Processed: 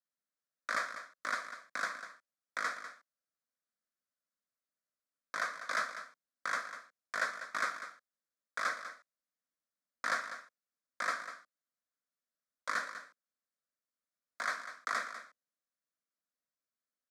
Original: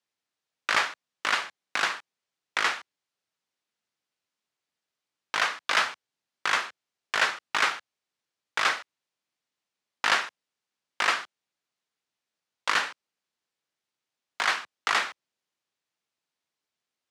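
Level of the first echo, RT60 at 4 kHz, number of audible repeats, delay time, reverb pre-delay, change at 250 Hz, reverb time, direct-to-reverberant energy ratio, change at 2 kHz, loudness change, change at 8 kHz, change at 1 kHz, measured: -11.5 dB, no reverb, 1, 197 ms, no reverb, -9.5 dB, no reverb, no reverb, -9.5 dB, -11.0 dB, -10.5 dB, -9.0 dB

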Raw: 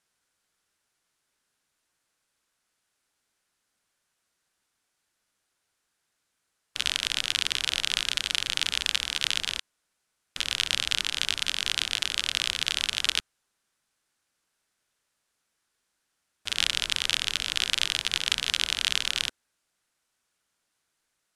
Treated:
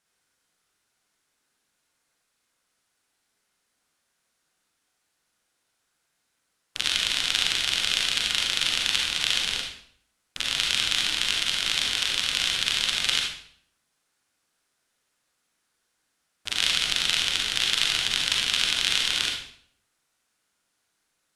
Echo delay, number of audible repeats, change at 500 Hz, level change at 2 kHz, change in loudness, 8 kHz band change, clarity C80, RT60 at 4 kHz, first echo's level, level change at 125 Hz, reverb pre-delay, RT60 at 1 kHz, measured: no echo, no echo, +4.0 dB, +3.0 dB, +3.0 dB, +3.0 dB, 6.5 dB, 0.50 s, no echo, +3.0 dB, 36 ms, 0.60 s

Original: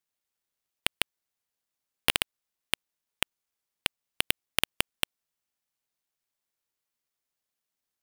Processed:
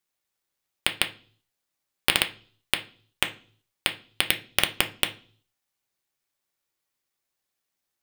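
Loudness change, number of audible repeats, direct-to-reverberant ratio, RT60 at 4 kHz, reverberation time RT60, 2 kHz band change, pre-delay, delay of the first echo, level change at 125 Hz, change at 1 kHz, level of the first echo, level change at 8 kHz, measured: +4.5 dB, no echo, 4.0 dB, 0.50 s, 0.45 s, +5.0 dB, 3 ms, no echo, +5.0 dB, +4.5 dB, no echo, +3.5 dB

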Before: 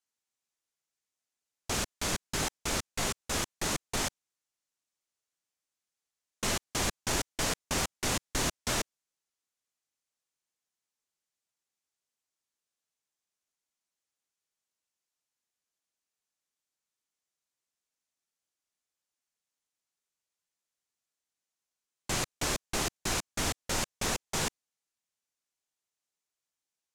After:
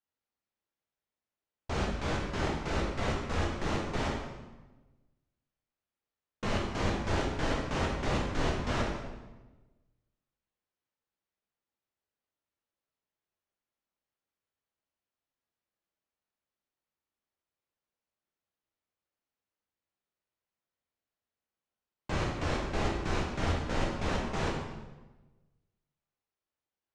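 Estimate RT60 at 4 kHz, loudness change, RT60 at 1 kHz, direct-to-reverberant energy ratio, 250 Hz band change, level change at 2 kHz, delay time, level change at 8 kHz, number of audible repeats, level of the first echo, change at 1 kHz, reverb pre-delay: 0.90 s, -1.0 dB, 1.1 s, -2.5 dB, +4.5 dB, -1.0 dB, no echo, -15.5 dB, no echo, no echo, +2.0 dB, 9 ms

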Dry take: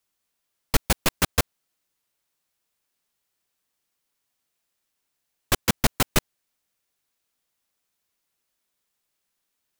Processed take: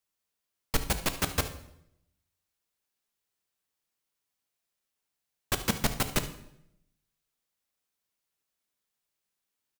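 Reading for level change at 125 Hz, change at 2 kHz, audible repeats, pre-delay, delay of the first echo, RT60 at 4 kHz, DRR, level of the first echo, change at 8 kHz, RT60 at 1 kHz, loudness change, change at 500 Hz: -5.5 dB, -6.5 dB, 1, 3 ms, 73 ms, 0.65 s, 8.0 dB, -16.0 dB, -6.5 dB, 0.70 s, -6.0 dB, -6.0 dB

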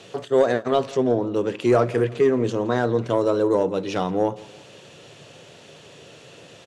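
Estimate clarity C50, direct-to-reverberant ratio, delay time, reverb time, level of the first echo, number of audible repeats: no reverb, no reverb, 169 ms, no reverb, -21.5 dB, 2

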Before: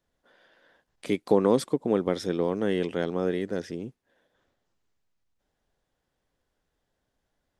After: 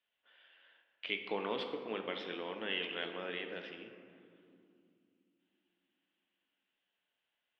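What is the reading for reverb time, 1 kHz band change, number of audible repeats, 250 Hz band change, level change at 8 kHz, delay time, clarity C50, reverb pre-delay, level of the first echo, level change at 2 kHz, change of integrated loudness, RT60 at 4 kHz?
2.6 s, -9.5 dB, no echo, -18.5 dB, under -30 dB, no echo, 7.0 dB, 3 ms, no echo, -0.5 dB, -12.5 dB, 1.1 s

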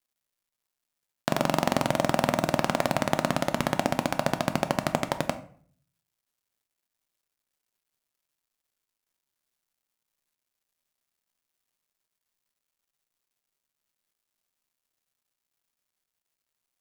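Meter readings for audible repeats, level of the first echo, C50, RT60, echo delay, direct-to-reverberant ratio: no echo, no echo, 14.0 dB, 0.50 s, no echo, 9.0 dB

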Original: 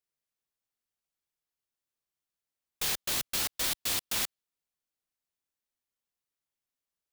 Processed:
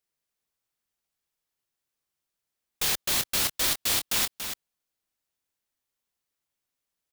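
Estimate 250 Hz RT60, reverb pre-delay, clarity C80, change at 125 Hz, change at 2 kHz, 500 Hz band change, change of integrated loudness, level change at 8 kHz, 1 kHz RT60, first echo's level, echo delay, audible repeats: no reverb, no reverb, no reverb, +5.5 dB, +5.0 dB, +5.0 dB, +4.5 dB, +5.0 dB, no reverb, -8.0 dB, 284 ms, 1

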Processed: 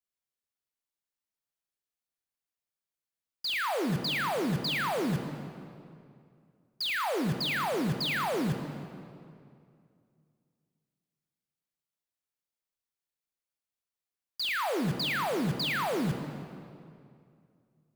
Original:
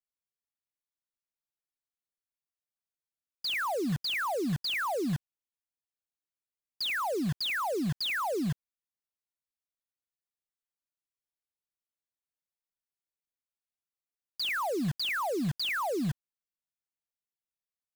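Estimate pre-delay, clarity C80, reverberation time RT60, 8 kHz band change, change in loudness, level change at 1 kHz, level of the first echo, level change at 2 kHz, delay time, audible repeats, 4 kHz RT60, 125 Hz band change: 21 ms, 8.5 dB, 2.4 s, +0.5 dB, +0.5 dB, +1.0 dB, no echo, +1.0 dB, no echo, no echo, 1.8 s, +1.5 dB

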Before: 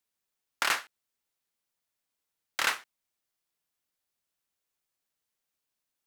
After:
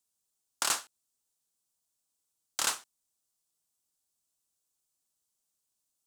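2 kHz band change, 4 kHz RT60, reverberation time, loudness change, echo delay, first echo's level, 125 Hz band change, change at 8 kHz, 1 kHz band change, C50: -8.5 dB, no reverb, no reverb, -1.5 dB, no echo, no echo, no reading, +6.5 dB, -4.0 dB, no reverb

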